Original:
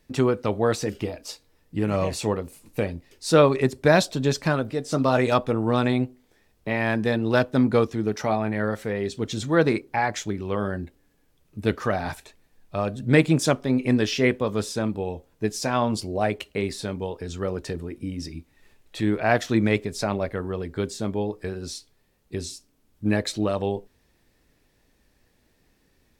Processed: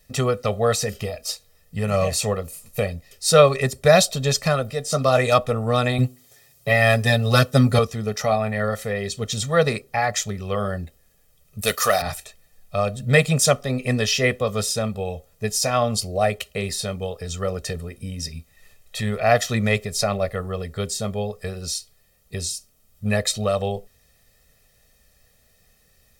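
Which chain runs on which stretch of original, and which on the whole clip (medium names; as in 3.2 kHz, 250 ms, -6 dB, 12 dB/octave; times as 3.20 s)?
5.98–7.79 s: high-pass 75 Hz + tone controls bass +3 dB, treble +6 dB + comb 7.3 ms, depth 88%
11.61–12.02 s: RIAA curve recording + waveshaping leveller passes 1
whole clip: treble shelf 4.6 kHz +11.5 dB; comb 1.6 ms, depth 100%; trim -1 dB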